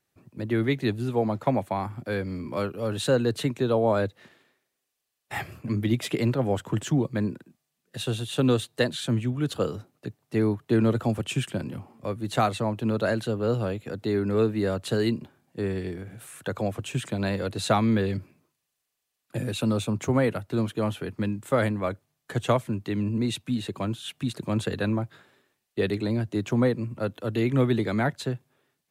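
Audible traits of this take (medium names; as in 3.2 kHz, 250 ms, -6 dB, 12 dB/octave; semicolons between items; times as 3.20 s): noise floor -81 dBFS; spectral tilt -6.0 dB/octave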